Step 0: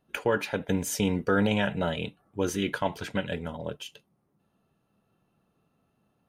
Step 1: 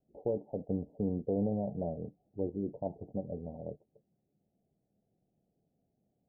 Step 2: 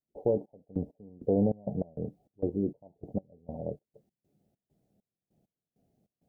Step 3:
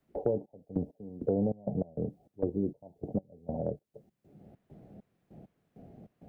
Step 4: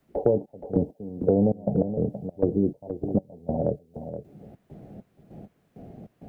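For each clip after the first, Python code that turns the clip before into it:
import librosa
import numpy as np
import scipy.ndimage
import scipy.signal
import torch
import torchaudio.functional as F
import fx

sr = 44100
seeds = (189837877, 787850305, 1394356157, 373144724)

y1 = scipy.signal.sosfilt(scipy.signal.butter(12, 770.0, 'lowpass', fs=sr, output='sos'), x)
y1 = F.gain(torch.from_numpy(y1), -6.5).numpy()
y2 = fx.step_gate(y1, sr, bpm=99, pattern='.xx..x..xx.x.xx', floor_db=-24.0, edge_ms=4.5)
y2 = F.gain(torch.from_numpy(y2), 6.0).numpy()
y3 = fx.band_squash(y2, sr, depth_pct=70)
y4 = y3 + 10.0 ** (-10.5 / 20.0) * np.pad(y3, (int(473 * sr / 1000.0), 0))[:len(y3)]
y4 = F.gain(torch.from_numpy(y4), 8.0).numpy()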